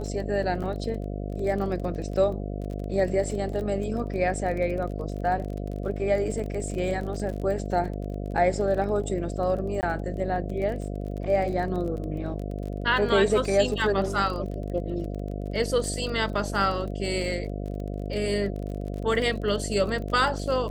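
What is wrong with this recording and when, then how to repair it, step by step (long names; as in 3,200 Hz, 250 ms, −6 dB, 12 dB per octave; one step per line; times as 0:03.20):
mains buzz 50 Hz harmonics 14 −32 dBFS
surface crackle 28 per second −33 dBFS
0:00.63–0:00.64: drop-out 6.8 ms
0:04.99: drop-out 2.4 ms
0:09.81–0:09.83: drop-out 19 ms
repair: click removal
hum removal 50 Hz, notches 14
repair the gap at 0:00.63, 6.8 ms
repair the gap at 0:04.99, 2.4 ms
repair the gap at 0:09.81, 19 ms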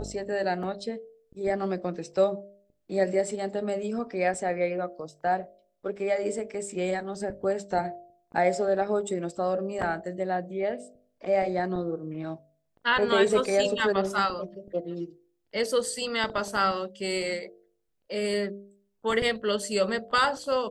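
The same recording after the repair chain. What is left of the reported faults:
none of them is left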